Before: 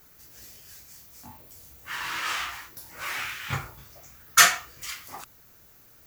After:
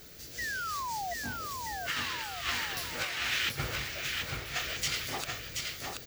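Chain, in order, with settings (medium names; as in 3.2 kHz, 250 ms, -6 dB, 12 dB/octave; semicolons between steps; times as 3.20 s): ten-band graphic EQ 500 Hz +5 dB, 1 kHz -10 dB, 4 kHz +6 dB, 16 kHz -9 dB; compressor with a negative ratio -37 dBFS, ratio -0.5; painted sound fall, 0.38–1.14 s, 670–2000 Hz -36 dBFS; bouncing-ball echo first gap 730 ms, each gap 0.75×, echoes 5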